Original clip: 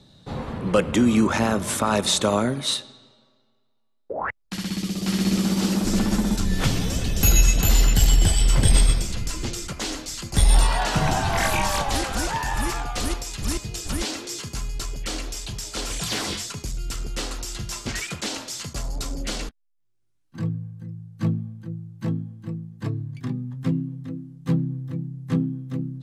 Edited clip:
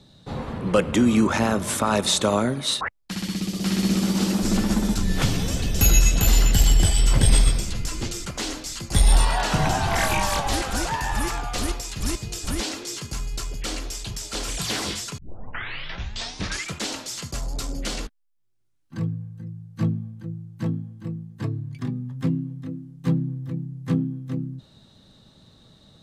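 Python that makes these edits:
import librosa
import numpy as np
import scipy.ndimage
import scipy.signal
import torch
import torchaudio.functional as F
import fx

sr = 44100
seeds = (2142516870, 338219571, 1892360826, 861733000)

y = fx.edit(x, sr, fx.cut(start_s=2.81, length_s=1.42),
    fx.tape_start(start_s=16.6, length_s=1.57), tone=tone)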